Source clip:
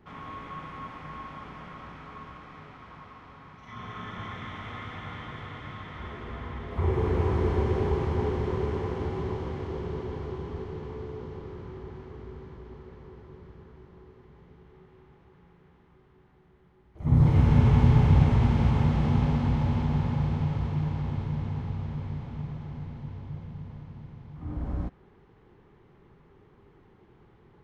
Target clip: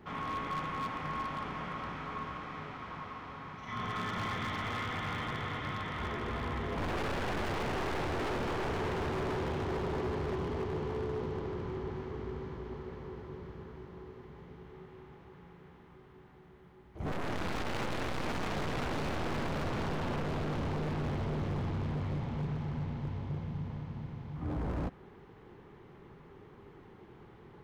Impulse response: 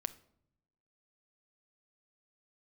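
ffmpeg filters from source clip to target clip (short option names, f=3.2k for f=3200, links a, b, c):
-af "lowshelf=f=100:g=-6.5,aeval=exprs='(tanh(28.2*val(0)+0.3)-tanh(0.3))/28.2':c=same,aeval=exprs='0.0178*(abs(mod(val(0)/0.0178+3,4)-2)-1)':c=same,volume=5.5dB"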